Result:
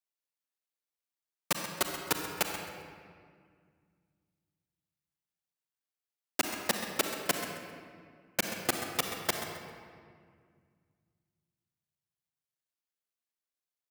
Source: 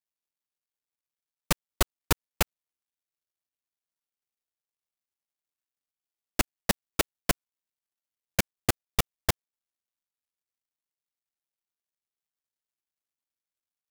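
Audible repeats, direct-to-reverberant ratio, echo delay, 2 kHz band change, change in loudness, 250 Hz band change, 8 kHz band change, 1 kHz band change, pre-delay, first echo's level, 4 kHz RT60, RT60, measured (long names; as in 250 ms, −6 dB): 1, 3.0 dB, 132 ms, −1.5 dB, −3.0 dB, −4.5 dB, −2.5 dB, −1.5 dB, 38 ms, −12.0 dB, 1.3 s, 2.0 s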